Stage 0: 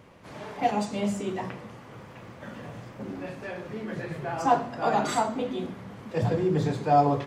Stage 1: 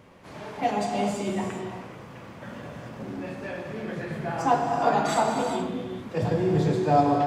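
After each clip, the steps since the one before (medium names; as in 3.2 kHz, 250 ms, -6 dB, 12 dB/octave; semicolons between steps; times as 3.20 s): gated-style reverb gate 450 ms flat, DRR 2 dB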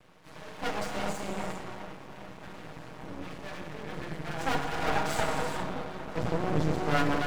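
comb filter that takes the minimum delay 6.4 ms; feedback echo behind a low-pass 403 ms, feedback 59%, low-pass 2 kHz, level -11 dB; half-wave rectifier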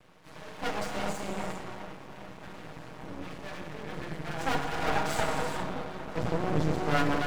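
no audible change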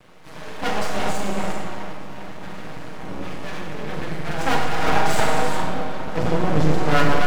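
Schroeder reverb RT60 0.7 s, combs from 30 ms, DRR 4.5 dB; trim +7.5 dB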